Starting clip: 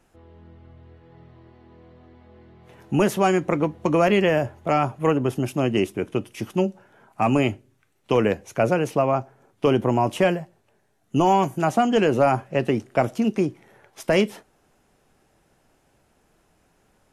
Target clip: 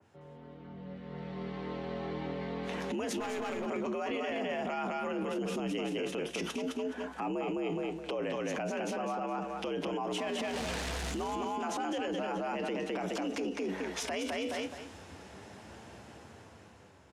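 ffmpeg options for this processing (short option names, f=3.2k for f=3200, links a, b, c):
-filter_complex "[0:a]asettb=1/sr,asplit=3[a][b][c];[a]atrim=end=10.144[d];[b]atrim=start=10.14:end=11.3,asetpts=PTS-STARTPTS,afade=t=in:d=0.004:c=qsin,afade=t=out:st=1.156:d=0.004:c=qsin,aeval=exprs='val(0)+0.5*0.0299*sgn(val(0))':c=same[e];[c]atrim=start=11.296[f];[d][e]acrossfade=d=0.004:c1=hsin:c2=qsin[g];[g][f]acrossfade=d=0.004:c1=qsin:c2=hsin,acompressor=threshold=-36dB:ratio=2,aecho=1:1:210|420|630:0.708|0.156|0.0343,afreqshift=65,asettb=1/sr,asplit=3[h][i][j];[h]atrim=end=7.214[k];[i]atrim=start=7.21:end=8.22,asetpts=PTS-STARTPTS,afade=t=in:d=0.004:c=qsin,afade=t=out:st=1.006:d=0.004:c=qsin,equalizer=f=480:w=0.62:g=10[l];[j]atrim=start=8.216[m];[k][l]acrossfade=d=0.004:c1=hsin:c2=qsin[n];[n][m]acrossfade=d=0.004:c1=qsin:c2=hsin,dynaudnorm=f=160:g=17:m=14dB,flanger=delay=8.6:depth=3.6:regen=72:speed=0.31:shape=sinusoidal,alimiter=level_in=6dB:limit=-24dB:level=0:latency=1:release=26,volume=-6dB,lowpass=6.6k,asettb=1/sr,asplit=3[o][p][q];[o]atrim=end=3.204[r];[p]atrim=start=3.2:end=3.66,asetpts=PTS-STARTPTS,afade=t=in:d=0.004:c=qsin,afade=t=out:st=0.456:d=0.004:c=qsin,aeval=exprs='clip(val(0),-1,0.0112)':c=same[s];[q]atrim=start=3.656[t];[r][s]acrossfade=d=0.004:c1=hsin:c2=qsin[u];[u][t]acrossfade=d=0.004:c1=qsin:c2=hsin,adynamicequalizer=threshold=0.00158:dfrequency=1900:dqfactor=0.7:tfrequency=1900:tqfactor=0.7:attack=5:release=100:ratio=0.375:range=2.5:mode=boostabove:tftype=highshelf,volume=2dB"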